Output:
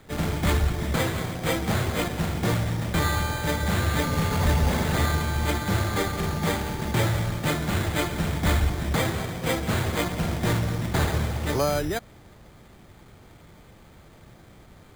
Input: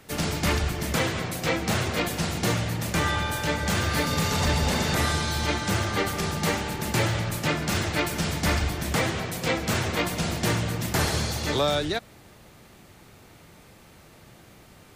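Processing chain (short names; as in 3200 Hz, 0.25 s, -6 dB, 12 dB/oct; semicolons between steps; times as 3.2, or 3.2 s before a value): low shelf 72 Hz +8.5 dB; careless resampling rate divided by 8×, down filtered, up hold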